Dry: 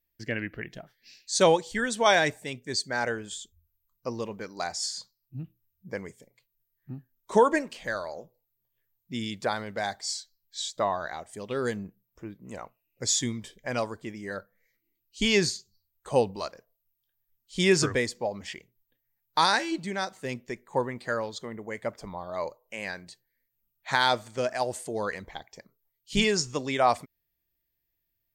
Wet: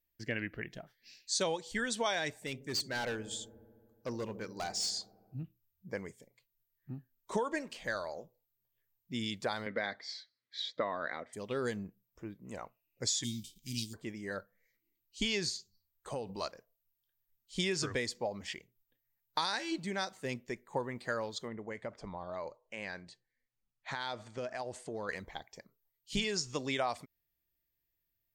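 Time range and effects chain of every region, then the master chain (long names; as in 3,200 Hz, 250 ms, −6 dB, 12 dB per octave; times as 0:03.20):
0:02.46–0:05.43: hard clipping −29 dBFS + delay with a low-pass on its return 72 ms, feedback 80%, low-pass 450 Hz, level −12.5 dB
0:09.66–0:11.33: loudspeaker in its box 130–3,800 Hz, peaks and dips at 260 Hz +9 dB, 510 Hz +7 dB, 790 Hz −7 dB, 1,300 Hz +4 dB, 2,000 Hz +9 dB, 2,800 Hz −8 dB + one half of a high-frequency compander encoder only
0:13.23–0:13.93: spectral envelope flattened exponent 0.6 + inverse Chebyshev band-stop filter 560–1,600 Hz, stop band 50 dB
0:15.55–0:16.33: mains-hum notches 50/100/150/200 Hz + downward compressor 8 to 1, threshold −30 dBFS
0:21.48–0:25.09: high-frequency loss of the air 73 metres + downward compressor 4 to 1, threshold −32 dBFS
whole clip: dynamic equaliser 4,100 Hz, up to +5 dB, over −40 dBFS, Q 0.87; downward compressor 6 to 1, threshold −26 dBFS; level −4 dB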